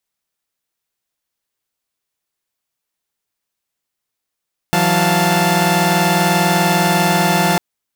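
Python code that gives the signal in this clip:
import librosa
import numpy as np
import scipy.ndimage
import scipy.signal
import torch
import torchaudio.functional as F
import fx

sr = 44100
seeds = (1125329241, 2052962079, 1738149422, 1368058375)

y = fx.chord(sr, length_s=2.85, notes=(52, 54, 77, 81), wave='saw', level_db=-15.5)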